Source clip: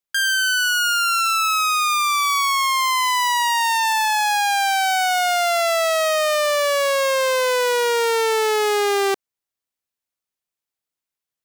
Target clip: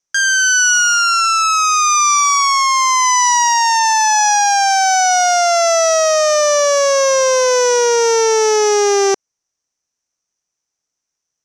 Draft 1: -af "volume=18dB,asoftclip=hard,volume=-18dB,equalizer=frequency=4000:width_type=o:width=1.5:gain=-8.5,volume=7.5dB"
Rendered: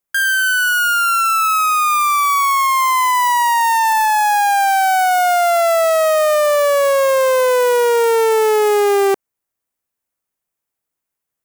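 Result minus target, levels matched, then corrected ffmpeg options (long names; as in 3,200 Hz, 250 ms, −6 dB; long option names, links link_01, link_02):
8,000 Hz band −10.0 dB
-af "volume=18dB,asoftclip=hard,volume=-18dB,lowpass=frequency=5900:width_type=q:width=11,equalizer=frequency=4000:width_type=o:width=1.5:gain=-8.5,volume=7.5dB"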